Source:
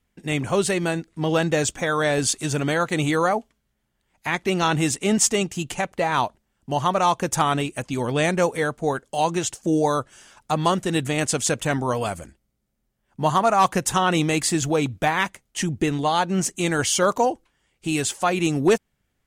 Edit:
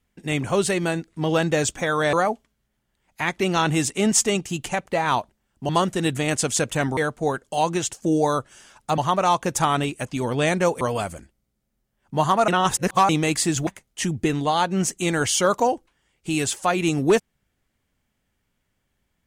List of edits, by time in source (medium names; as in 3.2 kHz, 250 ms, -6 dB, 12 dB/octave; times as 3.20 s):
2.13–3.19 s: delete
6.75–8.58 s: swap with 10.59–11.87 s
13.54–14.15 s: reverse
14.73–15.25 s: delete